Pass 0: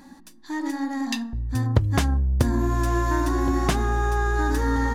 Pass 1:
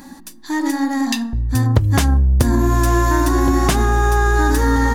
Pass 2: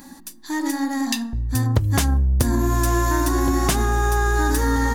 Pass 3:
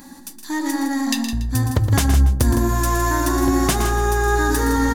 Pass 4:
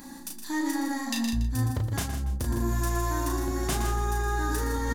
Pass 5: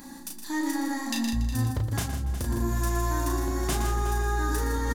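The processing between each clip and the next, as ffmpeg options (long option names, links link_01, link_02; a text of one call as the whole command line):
ffmpeg -i in.wav -filter_complex "[0:a]highshelf=frequency=7700:gain=8.5,asplit=2[link_01][link_02];[link_02]alimiter=limit=-15.5dB:level=0:latency=1:release=129,volume=2.5dB[link_03];[link_01][link_03]amix=inputs=2:normalize=0,volume=1dB" out.wav
ffmpeg -i in.wav -af "highshelf=frequency=5400:gain=6.5,volume=-4.5dB" out.wav
ffmpeg -i in.wav -af "aecho=1:1:117|161|285:0.335|0.355|0.106,volume=1dB" out.wav
ffmpeg -i in.wav -filter_complex "[0:a]areverse,acompressor=threshold=-23dB:ratio=6,areverse,asplit=2[link_01][link_02];[link_02]adelay=35,volume=-4.5dB[link_03];[link_01][link_03]amix=inputs=2:normalize=0,volume=-3.5dB" out.wav
ffmpeg -i in.wav -af "aecho=1:1:363:0.224" out.wav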